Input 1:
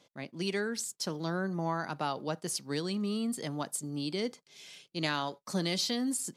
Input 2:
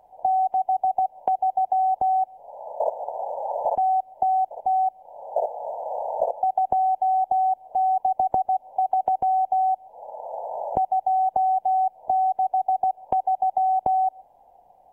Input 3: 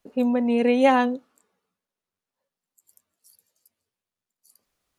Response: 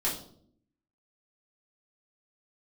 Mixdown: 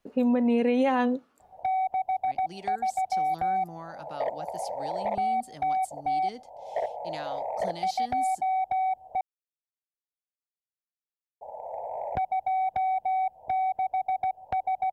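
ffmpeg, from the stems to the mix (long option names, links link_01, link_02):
-filter_complex "[0:a]acontrast=33,adelay=2100,volume=-14.5dB[link_01];[1:a]equalizer=frequency=88:width_type=o:width=2.2:gain=13.5,asoftclip=type=tanh:threshold=-17.5dB,adelay=1400,volume=-4dB,asplit=3[link_02][link_03][link_04];[link_02]atrim=end=9.21,asetpts=PTS-STARTPTS,afade=type=out:start_time=9.206:duration=0.004:curve=hsin[link_05];[link_03]atrim=start=9.21:end=11.41,asetpts=PTS-STARTPTS,volume=0[link_06];[link_04]atrim=start=11.41,asetpts=PTS-STARTPTS,afade=type=in:duration=0.004:curve=hsin[link_07];[link_05][link_06][link_07]concat=n=3:v=0:a=1[link_08];[2:a]highshelf=frequency=4300:gain=-7.5,alimiter=limit=-17dB:level=0:latency=1:release=166,volume=1.5dB[link_09];[link_01][link_08][link_09]amix=inputs=3:normalize=0"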